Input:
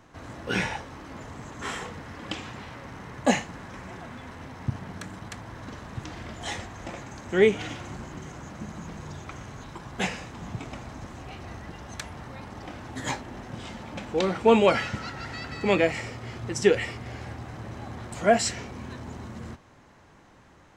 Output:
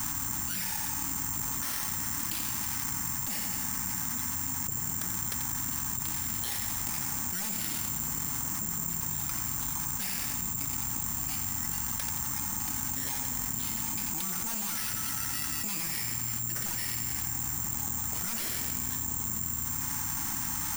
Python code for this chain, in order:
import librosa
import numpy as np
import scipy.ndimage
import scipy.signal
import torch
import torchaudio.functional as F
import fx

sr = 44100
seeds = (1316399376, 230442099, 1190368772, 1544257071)

y = np.minimum(x, 2.0 * 10.0 ** (-19.5 / 20.0) - x)
y = scipy.signal.sosfilt(scipy.signal.ellip(3, 1.0, 40, [290.0, 830.0], 'bandstop', fs=sr, output='sos'), y)
y = fx.tube_stage(y, sr, drive_db=32.0, bias=0.65)
y = fx.echo_feedback(y, sr, ms=87, feedback_pct=58, wet_db=-9.0)
y = (np.kron(y[::6], np.eye(6)[0]) * 6)[:len(y)]
y = fx.env_flatten(y, sr, amount_pct=100)
y = F.gain(torch.from_numpy(y), -8.5).numpy()